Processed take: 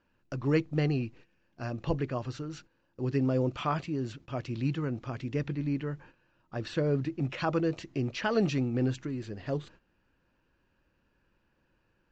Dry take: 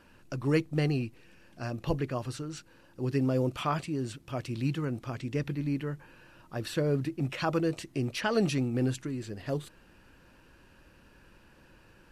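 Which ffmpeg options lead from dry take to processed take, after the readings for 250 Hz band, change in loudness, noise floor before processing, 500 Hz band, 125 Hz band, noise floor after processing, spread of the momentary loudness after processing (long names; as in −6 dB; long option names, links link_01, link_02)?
0.0 dB, 0.0 dB, −59 dBFS, 0.0 dB, 0.0 dB, −73 dBFS, 11 LU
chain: -af "aresample=16000,aresample=44100,highshelf=frequency=5600:gain=-9,agate=range=-14dB:threshold=-51dB:ratio=16:detection=peak"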